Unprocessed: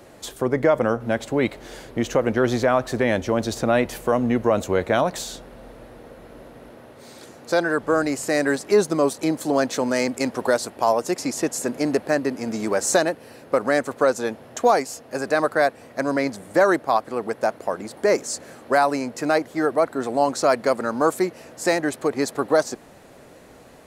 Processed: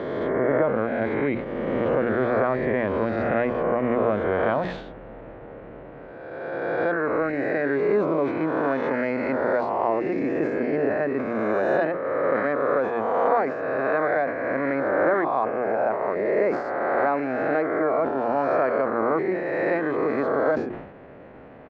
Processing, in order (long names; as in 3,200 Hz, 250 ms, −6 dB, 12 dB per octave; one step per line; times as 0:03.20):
peak hold with a rise ahead of every peak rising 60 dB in 1.90 s
low-pass filter 2,400 Hz 24 dB per octave
mains-hum notches 60/120/180/240/300/360 Hz
tempo change 1.1×
low-shelf EQ 440 Hz +4 dB
downward compressor 1.5 to 1, threshold −27 dBFS, peak gain reduction 7 dB
low-shelf EQ 60 Hz −6 dB
level that may fall only so fast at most 65 dB per second
level −2 dB